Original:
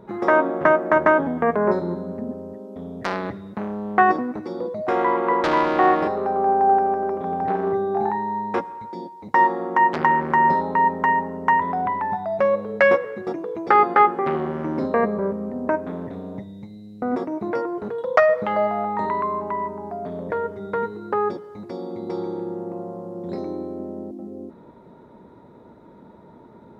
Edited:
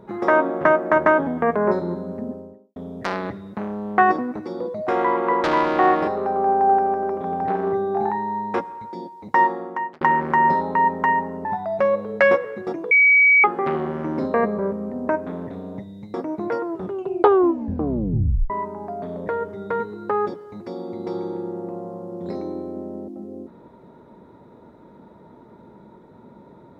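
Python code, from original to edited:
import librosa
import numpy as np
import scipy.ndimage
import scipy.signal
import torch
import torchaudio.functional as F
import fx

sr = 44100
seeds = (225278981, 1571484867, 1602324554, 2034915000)

y = fx.studio_fade_out(x, sr, start_s=2.23, length_s=0.53)
y = fx.edit(y, sr, fx.fade_out_span(start_s=9.39, length_s=0.62),
    fx.cut(start_s=11.45, length_s=0.6),
    fx.bleep(start_s=13.51, length_s=0.53, hz=2270.0, db=-10.5),
    fx.cut(start_s=16.74, length_s=0.43),
    fx.tape_stop(start_s=17.67, length_s=1.86), tone=tone)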